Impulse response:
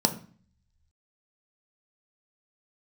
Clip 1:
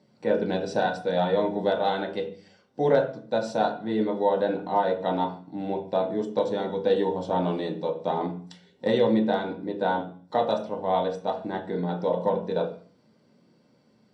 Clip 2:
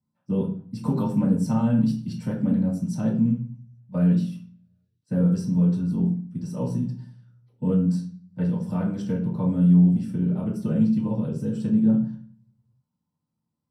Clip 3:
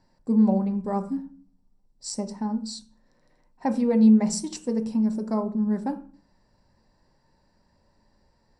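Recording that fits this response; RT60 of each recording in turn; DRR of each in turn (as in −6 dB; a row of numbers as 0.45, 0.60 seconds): 3; 0.45, 0.45, 0.45 seconds; 0.0, −7.5, 5.5 decibels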